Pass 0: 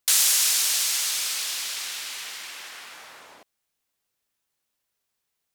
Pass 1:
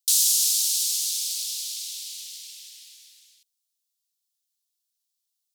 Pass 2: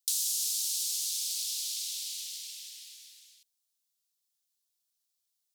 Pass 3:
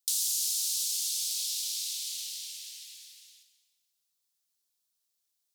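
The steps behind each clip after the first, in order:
inverse Chebyshev high-pass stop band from 1.1 kHz, stop band 60 dB
compression 3:1, threshold -30 dBFS, peak gain reduction 10 dB; trim -1 dB
reverberation RT60 1.4 s, pre-delay 4 ms, DRR 5 dB

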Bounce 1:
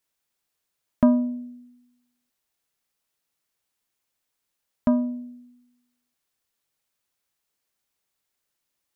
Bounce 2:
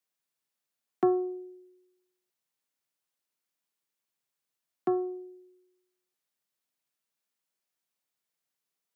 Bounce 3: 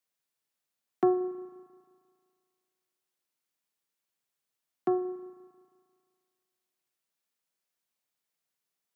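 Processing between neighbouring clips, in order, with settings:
frequency shift +120 Hz; trim -7 dB
spring tank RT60 2 s, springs 35 ms, chirp 25 ms, DRR 14 dB

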